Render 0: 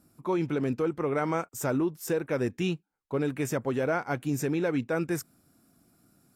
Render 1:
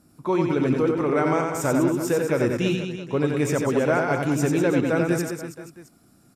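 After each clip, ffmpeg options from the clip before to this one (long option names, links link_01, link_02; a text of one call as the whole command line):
ffmpeg -i in.wav -filter_complex "[0:a]lowpass=11000,asplit=2[link_01][link_02];[link_02]aecho=0:1:90|198|327.6|483.1|669.7:0.631|0.398|0.251|0.158|0.1[link_03];[link_01][link_03]amix=inputs=2:normalize=0,volume=5dB" out.wav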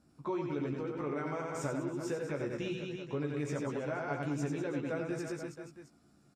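ffmpeg -i in.wav -filter_complex "[0:a]lowpass=6800,acompressor=threshold=-25dB:ratio=6,asplit=2[link_01][link_02];[link_02]adelay=14,volume=-5dB[link_03];[link_01][link_03]amix=inputs=2:normalize=0,volume=-9dB" out.wav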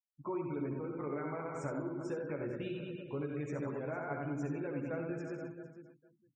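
ffmpeg -i in.wav -af "afftfilt=real='re*gte(hypot(re,im),0.00562)':imag='im*gte(hypot(re,im),0.00562)':win_size=1024:overlap=0.75,highshelf=frequency=3900:gain=-7.5,aecho=1:1:66|454:0.376|0.15,volume=-3dB" out.wav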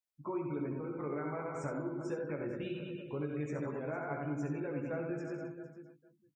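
ffmpeg -i in.wav -filter_complex "[0:a]asplit=2[link_01][link_02];[link_02]adelay=20,volume=-10dB[link_03];[link_01][link_03]amix=inputs=2:normalize=0" out.wav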